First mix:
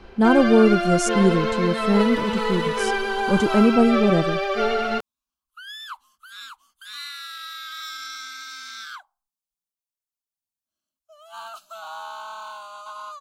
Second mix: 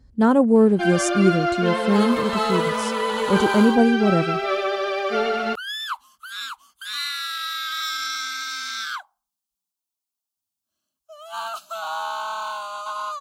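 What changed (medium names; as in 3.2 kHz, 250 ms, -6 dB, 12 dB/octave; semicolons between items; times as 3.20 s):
first sound: entry +0.55 s; second sound +7.5 dB; master: add high-pass 45 Hz 12 dB/octave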